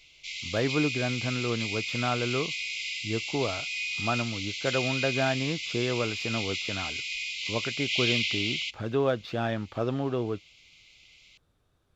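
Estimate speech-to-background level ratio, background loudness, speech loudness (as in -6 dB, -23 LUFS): -0.5 dB, -31.0 LUFS, -31.5 LUFS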